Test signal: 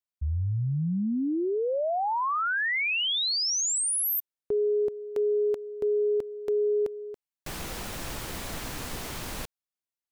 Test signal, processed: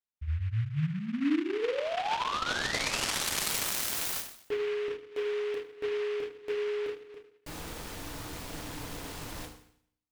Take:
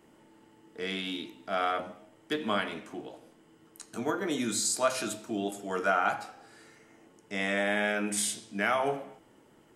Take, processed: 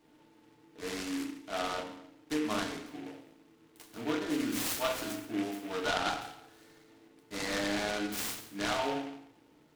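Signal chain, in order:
feedback delay network reverb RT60 0.64 s, low-frequency decay 1.1×, high-frequency decay 1×, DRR −0.5 dB
short delay modulated by noise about 1,900 Hz, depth 0.084 ms
level −7.5 dB

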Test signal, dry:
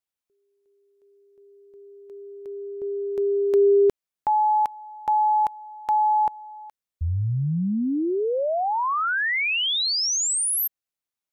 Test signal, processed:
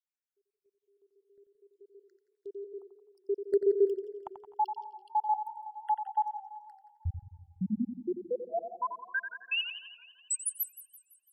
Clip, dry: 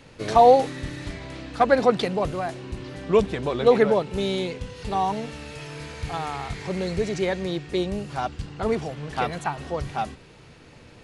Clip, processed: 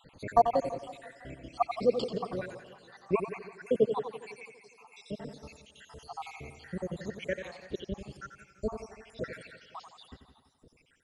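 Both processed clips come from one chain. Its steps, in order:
time-frequency cells dropped at random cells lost 82%
bucket-brigade delay 89 ms, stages 4,096, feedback 45%, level −9 dB
feedback echo with a swinging delay time 167 ms, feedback 56%, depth 134 cents, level −16 dB
level −5 dB

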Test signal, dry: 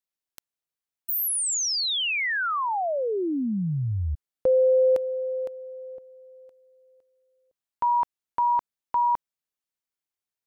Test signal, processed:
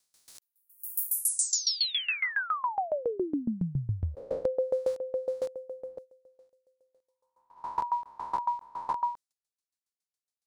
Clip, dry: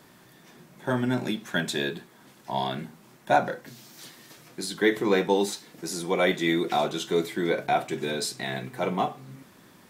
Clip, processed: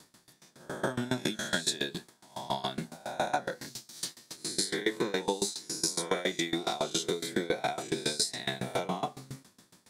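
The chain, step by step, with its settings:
peak hold with a rise ahead of every peak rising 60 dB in 0.71 s
noise gate −45 dBFS, range −9 dB
flat-topped bell 6,400 Hz +9.5 dB
downward compressor 4 to 1, threshold −27 dBFS
tremolo with a ramp in dB decaying 7.2 Hz, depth 22 dB
level +4.5 dB

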